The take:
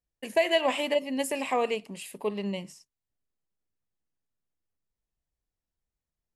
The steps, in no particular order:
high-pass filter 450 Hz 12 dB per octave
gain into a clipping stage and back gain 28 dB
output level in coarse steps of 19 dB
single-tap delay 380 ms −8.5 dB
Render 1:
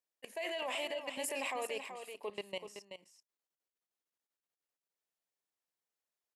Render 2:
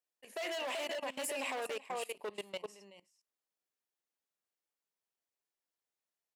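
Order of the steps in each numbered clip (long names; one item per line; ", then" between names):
high-pass filter, then output level in coarse steps, then gain into a clipping stage and back, then single-tap delay
single-tap delay, then gain into a clipping stage and back, then high-pass filter, then output level in coarse steps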